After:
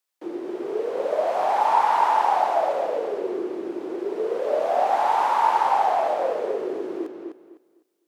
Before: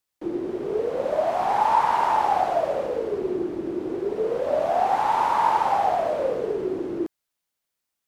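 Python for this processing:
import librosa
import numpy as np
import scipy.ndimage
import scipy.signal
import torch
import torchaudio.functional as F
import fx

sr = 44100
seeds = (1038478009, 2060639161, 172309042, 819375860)

p1 = scipy.signal.sosfilt(scipy.signal.butter(2, 370.0, 'highpass', fs=sr, output='sos'), x)
y = p1 + fx.echo_filtered(p1, sr, ms=253, feedback_pct=24, hz=4500.0, wet_db=-5.0, dry=0)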